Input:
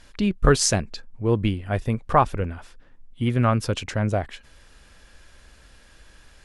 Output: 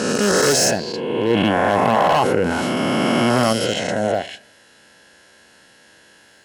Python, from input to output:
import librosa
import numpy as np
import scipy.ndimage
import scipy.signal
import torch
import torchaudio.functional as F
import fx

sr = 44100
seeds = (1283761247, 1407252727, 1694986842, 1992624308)

y = fx.spec_swells(x, sr, rise_s=2.12)
y = scipy.signal.sosfilt(scipy.signal.butter(2, 170.0, 'highpass', fs=sr, output='sos'), y)
y = np.clip(y, -10.0 ** (-13.0 / 20.0), 10.0 ** (-13.0 / 20.0))
y = fx.notch_comb(y, sr, f0_hz=1200.0)
y = fx.rev_plate(y, sr, seeds[0], rt60_s=0.71, hf_ratio=0.55, predelay_ms=0, drr_db=17.5)
y = fx.env_flatten(y, sr, amount_pct=70, at=(1.3, 3.53))
y = F.gain(torch.from_numpy(y), 2.5).numpy()